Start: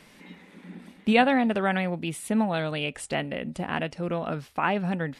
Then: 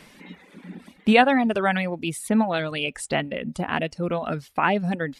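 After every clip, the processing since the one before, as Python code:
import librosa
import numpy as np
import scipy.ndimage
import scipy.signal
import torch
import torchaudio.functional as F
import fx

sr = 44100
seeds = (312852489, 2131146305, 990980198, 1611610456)

y = fx.dereverb_blind(x, sr, rt60_s=0.89)
y = F.gain(torch.from_numpy(y), 4.5).numpy()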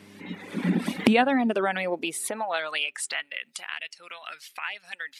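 y = fx.recorder_agc(x, sr, target_db=-10.5, rise_db_per_s=32.0, max_gain_db=30)
y = fx.dmg_buzz(y, sr, base_hz=100.0, harmonics=4, level_db=-45.0, tilt_db=-4, odd_only=False)
y = fx.filter_sweep_highpass(y, sr, from_hz=180.0, to_hz=2200.0, start_s=1.19, end_s=3.47, q=1.1)
y = F.gain(torch.from_numpy(y), -5.5).numpy()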